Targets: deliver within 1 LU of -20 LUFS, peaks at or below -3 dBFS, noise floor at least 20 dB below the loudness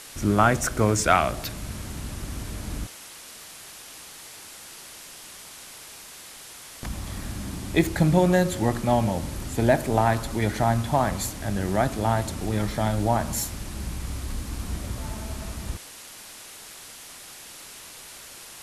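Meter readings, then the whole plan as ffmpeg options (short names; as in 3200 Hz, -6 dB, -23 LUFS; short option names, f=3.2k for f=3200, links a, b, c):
noise floor -44 dBFS; noise floor target -46 dBFS; loudness -25.5 LUFS; peak -4.0 dBFS; loudness target -20.0 LUFS
-> -af "afftdn=nr=6:nf=-44"
-af "volume=5.5dB,alimiter=limit=-3dB:level=0:latency=1"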